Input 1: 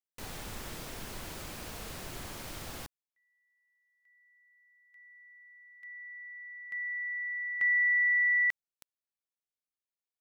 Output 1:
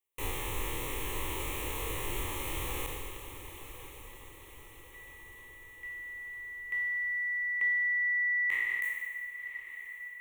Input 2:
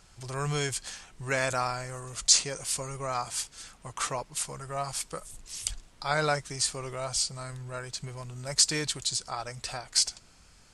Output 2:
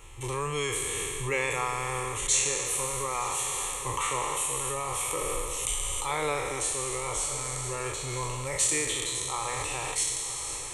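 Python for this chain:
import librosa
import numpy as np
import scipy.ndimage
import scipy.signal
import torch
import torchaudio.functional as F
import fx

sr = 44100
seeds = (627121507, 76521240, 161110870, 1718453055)

p1 = fx.spec_trails(x, sr, decay_s=2.04)
p2 = fx.dereverb_blind(p1, sr, rt60_s=0.53)
p3 = fx.over_compress(p2, sr, threshold_db=-37.0, ratio=-1.0)
p4 = p2 + (p3 * librosa.db_to_amplitude(-1.0))
p5 = fx.fixed_phaser(p4, sr, hz=1000.0, stages=8)
y = fx.echo_diffused(p5, sr, ms=1039, feedback_pct=53, wet_db=-11.5)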